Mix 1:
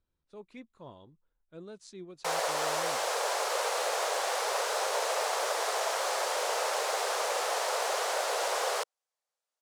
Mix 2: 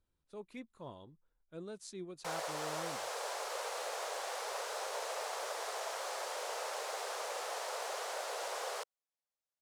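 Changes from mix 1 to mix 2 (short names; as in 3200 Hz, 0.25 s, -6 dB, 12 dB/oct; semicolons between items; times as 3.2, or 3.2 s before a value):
speech: remove LPF 7000 Hz; background -9.5 dB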